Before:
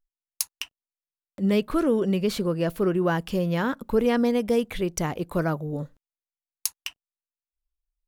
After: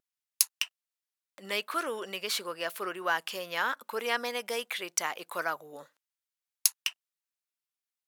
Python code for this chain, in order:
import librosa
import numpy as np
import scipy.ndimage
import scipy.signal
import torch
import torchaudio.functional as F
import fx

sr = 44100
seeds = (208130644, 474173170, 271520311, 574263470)

y = scipy.signal.sosfilt(scipy.signal.butter(2, 1100.0, 'highpass', fs=sr, output='sos'), x)
y = fx.vibrato(y, sr, rate_hz=2.4, depth_cents=24.0)
y = F.gain(torch.from_numpy(y), 3.0).numpy()